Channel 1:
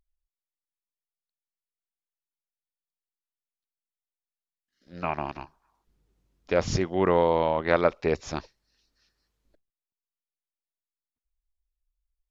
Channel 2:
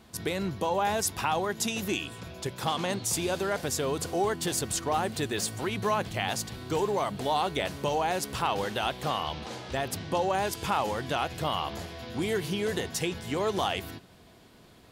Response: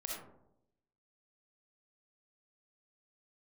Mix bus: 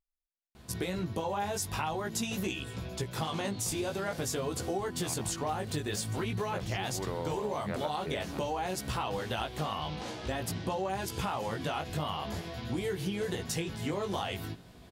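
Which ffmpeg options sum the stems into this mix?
-filter_complex "[0:a]volume=0.237[s0];[1:a]lowshelf=f=200:g=6.5,flanger=delay=15.5:depth=4.5:speed=0.48,adelay=550,volume=1.26[s1];[s0][s1]amix=inputs=2:normalize=0,acompressor=threshold=0.0316:ratio=6"

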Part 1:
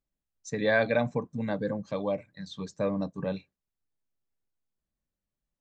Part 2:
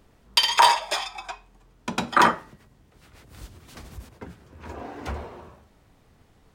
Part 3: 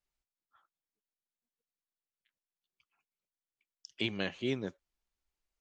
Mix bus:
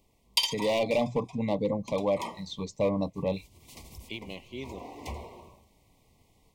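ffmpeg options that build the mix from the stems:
-filter_complex "[0:a]bandreject=f=60:t=h:w=6,bandreject=f=120:t=h:w=6,asubboost=boost=6.5:cutoff=65,asoftclip=type=hard:threshold=0.0708,volume=0.944,asplit=2[s0][s1];[1:a]highshelf=f=4800:g=9.5,volume=0.299[s2];[2:a]adelay=100,volume=0.299[s3];[s1]apad=whole_len=288690[s4];[s2][s4]sidechaincompress=threshold=0.00631:ratio=12:attack=8.5:release=256[s5];[s0][s5][s3]amix=inputs=3:normalize=0,dynaudnorm=f=590:g=3:m=1.58,asuperstop=centerf=1500:order=12:qfactor=1.7,equalizer=f=1600:w=1.3:g=4.5"

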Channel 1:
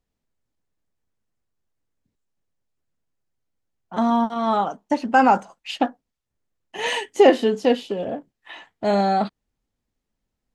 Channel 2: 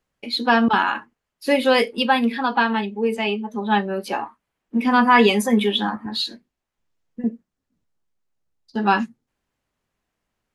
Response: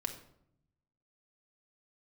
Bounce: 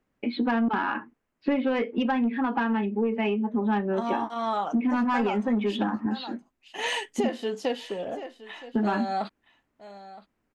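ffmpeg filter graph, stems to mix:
-filter_complex "[0:a]lowshelf=f=360:g=-9,volume=0.75,asplit=2[s0][s1];[s1]volume=0.0944[s2];[1:a]lowpass=f=2600:w=0.5412,lowpass=f=2600:w=1.3066,equalizer=f=280:w=1.4:g=9,acontrast=60,volume=0.501[s3];[s2]aecho=0:1:968:1[s4];[s0][s3][s4]amix=inputs=3:normalize=0,acompressor=threshold=0.0708:ratio=6"

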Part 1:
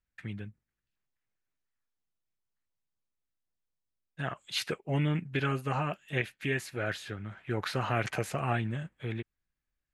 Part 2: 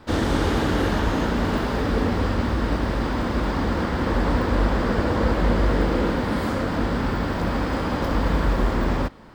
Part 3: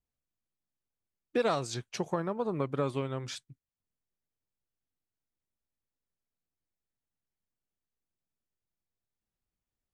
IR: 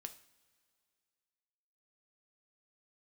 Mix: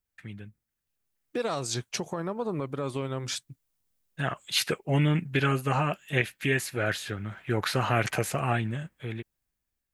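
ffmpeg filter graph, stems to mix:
-filter_complex "[0:a]dynaudnorm=f=390:g=9:m=2.37,volume=0.75[s0];[2:a]volume=0.75,dynaudnorm=f=290:g=7:m=2.66,alimiter=limit=0.0944:level=0:latency=1:release=180,volume=1[s1];[s0][s1]amix=inputs=2:normalize=0,highshelf=f=7900:g=9"

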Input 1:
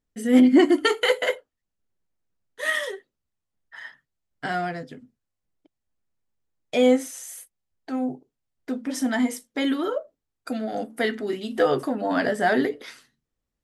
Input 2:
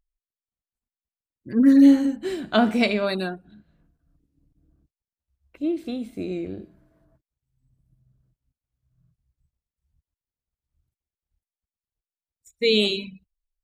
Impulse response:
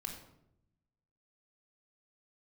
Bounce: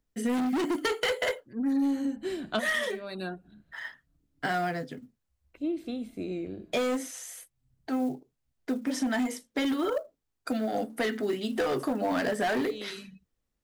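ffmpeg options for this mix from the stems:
-filter_complex "[0:a]volume=10.6,asoftclip=hard,volume=0.0944,acrusher=bits=8:mode=log:mix=0:aa=0.000001,volume=1.06,asplit=2[s0][s1];[1:a]acontrast=89,volume=0.251[s2];[s1]apad=whole_len=601190[s3];[s2][s3]sidechaincompress=threshold=0.00316:ratio=3:attack=16:release=265[s4];[s0][s4]amix=inputs=2:normalize=0,acrossover=split=120|6000[s5][s6][s7];[s5]acompressor=threshold=0.00224:ratio=4[s8];[s6]acompressor=threshold=0.0562:ratio=4[s9];[s7]acompressor=threshold=0.00562:ratio=4[s10];[s8][s9][s10]amix=inputs=3:normalize=0"

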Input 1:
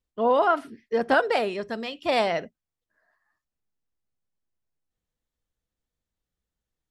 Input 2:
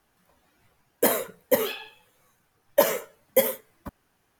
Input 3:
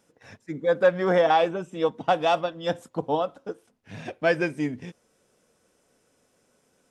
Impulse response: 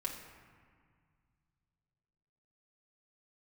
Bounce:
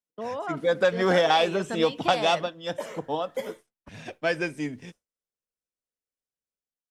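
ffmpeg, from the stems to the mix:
-filter_complex "[0:a]acompressor=threshold=0.00794:ratio=2,volume=1[s0];[1:a]lowpass=5300,volume=0.15[s1];[2:a]highshelf=f=2200:g=7.5,volume=0.794,afade=t=out:st=2.04:d=0.52:silence=0.281838,asplit=2[s2][s3];[s3]apad=whole_len=193952[s4];[s1][s4]sidechaincompress=threshold=0.0112:ratio=4:attack=23:release=543[s5];[s0][s5][s2]amix=inputs=3:normalize=0,dynaudnorm=f=470:g=3:m=2.82,agate=range=0.0224:threshold=0.01:ratio=3:detection=peak,acrossover=split=130|3000[s6][s7][s8];[s7]acompressor=threshold=0.1:ratio=3[s9];[s6][s9][s8]amix=inputs=3:normalize=0"

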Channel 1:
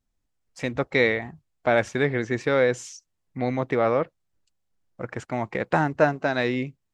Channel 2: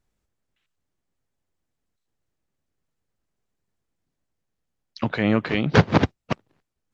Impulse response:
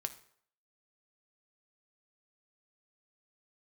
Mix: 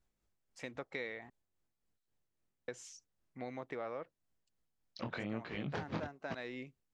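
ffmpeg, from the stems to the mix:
-filter_complex "[0:a]lowshelf=f=190:g=-11.5,volume=0.251,asplit=3[s0][s1][s2];[s0]atrim=end=1.3,asetpts=PTS-STARTPTS,afade=t=out:st=1.296:d=0.004:c=hsin[s3];[s1]atrim=start=1.3:end=2.68,asetpts=PTS-STARTPTS,volume=0[s4];[s2]atrim=start=2.68,asetpts=PTS-STARTPTS,afade=t=in:d=0.004:c=hsin[s5];[s3][s4][s5]concat=n=3:v=0:a=1[s6];[1:a]acompressor=threshold=0.1:ratio=2.5,tremolo=f=3.7:d=0.48,flanger=delay=17:depth=8:speed=1.1,volume=0.841[s7];[s6][s7]amix=inputs=2:normalize=0,acompressor=threshold=0.01:ratio=3"

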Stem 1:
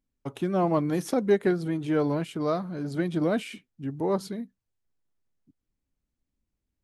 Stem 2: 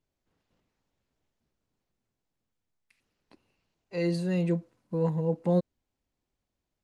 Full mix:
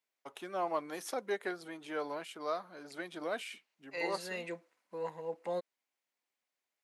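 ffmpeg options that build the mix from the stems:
-filter_complex "[0:a]volume=0.596[s0];[1:a]equalizer=f=2100:t=o:w=0.61:g=6.5,volume=0.75[s1];[s0][s1]amix=inputs=2:normalize=0,highpass=680"

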